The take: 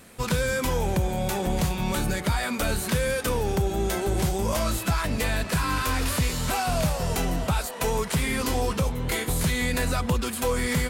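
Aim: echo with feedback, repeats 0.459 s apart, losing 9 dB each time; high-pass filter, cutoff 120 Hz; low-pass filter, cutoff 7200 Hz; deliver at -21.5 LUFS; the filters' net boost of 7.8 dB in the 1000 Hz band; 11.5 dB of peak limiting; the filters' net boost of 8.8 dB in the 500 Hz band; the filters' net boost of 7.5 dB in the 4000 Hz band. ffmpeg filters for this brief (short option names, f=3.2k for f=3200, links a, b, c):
-af "highpass=120,lowpass=7.2k,equalizer=f=500:t=o:g=8.5,equalizer=f=1k:t=o:g=6.5,equalizer=f=4k:t=o:g=9,alimiter=limit=-18.5dB:level=0:latency=1,aecho=1:1:459|918|1377|1836:0.355|0.124|0.0435|0.0152,volume=4.5dB"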